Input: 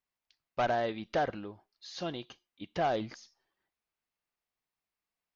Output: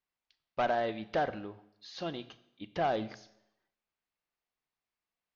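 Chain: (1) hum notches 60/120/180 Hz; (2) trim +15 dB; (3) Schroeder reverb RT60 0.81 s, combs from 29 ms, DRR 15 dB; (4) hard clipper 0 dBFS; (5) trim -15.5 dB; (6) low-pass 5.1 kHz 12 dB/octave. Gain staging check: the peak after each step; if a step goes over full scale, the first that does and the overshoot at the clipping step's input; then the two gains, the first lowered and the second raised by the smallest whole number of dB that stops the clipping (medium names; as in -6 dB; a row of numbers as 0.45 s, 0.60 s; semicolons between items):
-20.0 dBFS, -5.0 dBFS, -4.5 dBFS, -4.5 dBFS, -20.0 dBFS, -20.0 dBFS; nothing clips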